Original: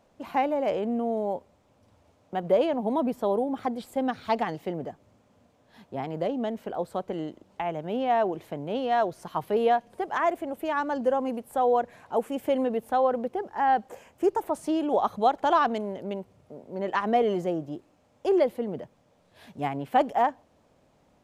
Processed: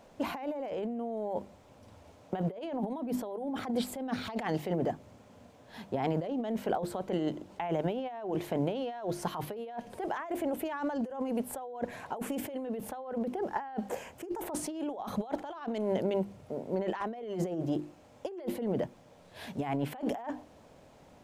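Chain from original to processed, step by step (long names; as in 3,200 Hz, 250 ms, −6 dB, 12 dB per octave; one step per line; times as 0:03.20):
mains-hum notches 50/100/150/200/250/300/350 Hz
compressor whose output falls as the input rises −35 dBFS, ratio −1
notch filter 1,200 Hz, Q 22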